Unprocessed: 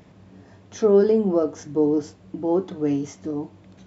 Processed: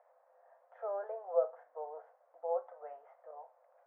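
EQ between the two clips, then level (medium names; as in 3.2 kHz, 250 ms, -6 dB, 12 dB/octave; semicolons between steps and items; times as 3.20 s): rippled Chebyshev high-pass 500 Hz, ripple 6 dB; low-pass 1.2 kHz 24 dB/octave; -3.5 dB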